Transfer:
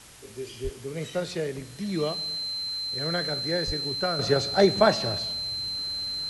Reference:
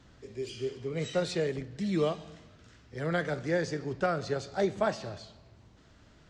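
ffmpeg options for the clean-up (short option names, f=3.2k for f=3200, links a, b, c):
-filter_complex "[0:a]bandreject=f=4.1k:w=30,asplit=3[a][b][c];[a]afade=t=out:st=0.63:d=0.02[d];[b]highpass=f=140:w=0.5412,highpass=f=140:w=1.3066,afade=t=in:st=0.63:d=0.02,afade=t=out:st=0.75:d=0.02[e];[c]afade=t=in:st=0.75:d=0.02[f];[d][e][f]amix=inputs=3:normalize=0,asplit=3[g][h][i];[g]afade=t=out:st=3.66:d=0.02[j];[h]highpass=f=140:w=0.5412,highpass=f=140:w=1.3066,afade=t=in:st=3.66:d=0.02,afade=t=out:st=3.78:d=0.02[k];[i]afade=t=in:st=3.78:d=0.02[l];[j][k][l]amix=inputs=3:normalize=0,afwtdn=0.004,asetnsamples=n=441:p=0,asendcmd='4.19 volume volume -9dB',volume=0dB"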